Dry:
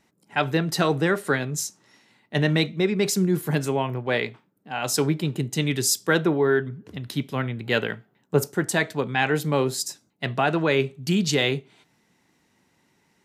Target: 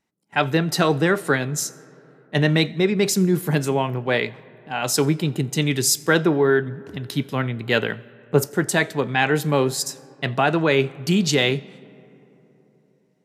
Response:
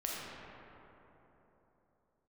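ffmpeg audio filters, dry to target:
-filter_complex "[0:a]agate=range=-15dB:threshold=-49dB:ratio=16:detection=peak,asplit=2[link_01][link_02];[1:a]atrim=start_sample=2205,adelay=87[link_03];[link_02][link_03]afir=irnorm=-1:irlink=0,volume=-26dB[link_04];[link_01][link_04]amix=inputs=2:normalize=0,volume=3dB"

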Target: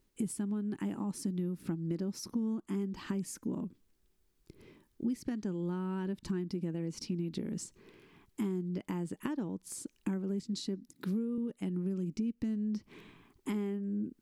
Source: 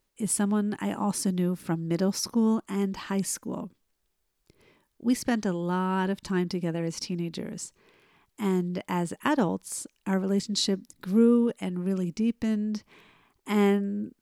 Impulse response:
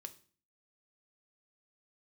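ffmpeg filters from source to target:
-filter_complex "[0:a]asettb=1/sr,asplit=3[link_01][link_02][link_03];[link_01]atrim=end=10.914[link_04];[link_02]atrim=start=10.91:end=11.38,asetpts=PTS-STARTPTS,afade=type=in:duration=0.004:curve=qsin,afade=type=out:start_time=0.466:duration=0.004:curve=qsin,highpass=180[link_05];[link_03]atrim=start=11.376[link_06];[link_04][link_05]acrossfade=duration=0.004:curve1=hsin:curve2=qsin[link_07];[link_07][link_06]acrossfade=duration=0.004:curve1=qsin:curve2=hsin,acompressor=threshold=-38dB:ratio=12,lowshelf=frequency=450:width_type=q:width=1.5:gain=7,volume=-1.5dB"

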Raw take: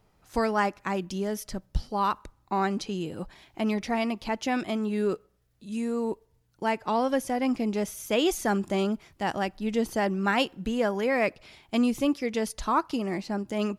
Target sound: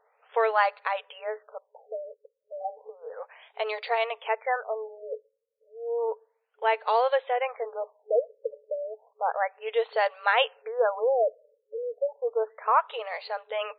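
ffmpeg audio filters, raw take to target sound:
ffmpeg -i in.wav -af "afftfilt=real='re*between(b*sr/4096,430,7900)':imag='im*between(b*sr/4096,430,7900)':win_size=4096:overlap=0.75,afftfilt=real='re*lt(b*sr/1024,580*pow(4700/580,0.5+0.5*sin(2*PI*0.32*pts/sr)))':imag='im*lt(b*sr/1024,580*pow(4700/580,0.5+0.5*sin(2*PI*0.32*pts/sr)))':win_size=1024:overlap=0.75,volume=3.5dB" out.wav

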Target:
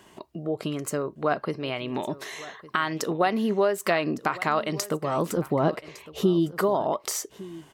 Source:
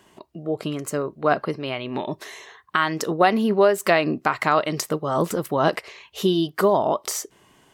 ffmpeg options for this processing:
ffmpeg -i in.wav -filter_complex "[0:a]asettb=1/sr,asplit=3[link_01][link_02][link_03];[link_01]atrim=end=5.374[link_04];[link_02]atrim=start=5.37:end=6.52,asetpts=PTS-STARTPTS,afade=type=in:duration=0.004:curve=qsin,afade=type=out:start_time=1.146:duration=0.004:curve=qsin,tiltshelf=frequency=850:gain=7[link_05];[link_03]atrim=start=6.516[link_06];[link_04][link_05]acrossfade=duration=0.004:curve1=hsin:curve2=qsin[link_07];[link_07][link_06]acrossfade=duration=0.004:curve1=qsin:curve2=hsin,acompressor=threshold=-35dB:ratio=1.5,asplit=2[link_08][link_09];[link_09]aecho=0:1:1158:0.126[link_10];[link_08][link_10]amix=inputs=2:normalize=0,volume=2dB" out.wav

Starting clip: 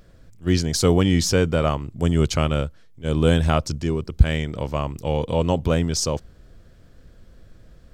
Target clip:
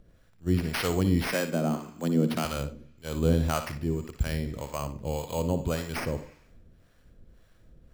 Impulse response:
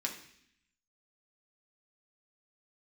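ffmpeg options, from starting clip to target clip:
-filter_complex "[0:a]acrusher=samples=6:mix=1:aa=0.000001,asettb=1/sr,asplit=3[link_01][link_02][link_03];[link_01]atrim=end=1.324[link_04];[link_02]atrim=start=1.32:end=2.45,asetpts=PTS-STARTPTS,afade=type=in:duration=0.004:curve=qsin,afade=type=out:start_time=1.126:duration=0.004:curve=qsin,afreqshift=80[link_05];[link_03]atrim=start=2.446[link_06];[link_04][link_05]acrossfade=duration=0.004:curve1=hsin:curve2=qsin[link_07];[link_07][link_06]acrossfade=duration=0.004:curve1=qsin:curve2=hsin,asplit=2[link_08][link_09];[1:a]atrim=start_sample=2205,adelay=57[link_10];[link_09][link_10]afir=irnorm=-1:irlink=0,volume=-10dB[link_11];[link_08][link_11]amix=inputs=2:normalize=0,acrossover=split=590[link_12][link_13];[link_12]aeval=exprs='val(0)*(1-0.7/2+0.7/2*cos(2*PI*1.8*n/s))':channel_layout=same[link_14];[link_13]aeval=exprs='val(0)*(1-0.7/2-0.7/2*cos(2*PI*1.8*n/s))':channel_layout=same[link_15];[link_14][link_15]amix=inputs=2:normalize=0,volume=-5dB"

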